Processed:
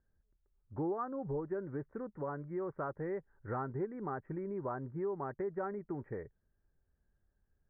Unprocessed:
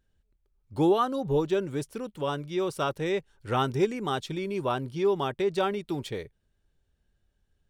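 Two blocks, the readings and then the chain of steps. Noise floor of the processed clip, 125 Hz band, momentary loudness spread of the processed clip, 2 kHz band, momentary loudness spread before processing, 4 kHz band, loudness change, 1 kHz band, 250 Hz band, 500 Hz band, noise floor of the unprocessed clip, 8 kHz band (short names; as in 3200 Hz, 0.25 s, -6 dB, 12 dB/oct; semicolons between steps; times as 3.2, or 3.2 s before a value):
-79 dBFS, -9.0 dB, 5 LU, -12.5 dB, 9 LU, under -40 dB, -11.0 dB, -11.5 dB, -10.5 dB, -11.0 dB, -74 dBFS, under -30 dB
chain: steep low-pass 1900 Hz 72 dB/oct; compressor 2.5:1, threshold -32 dBFS, peak gain reduction 9.5 dB; gain -5 dB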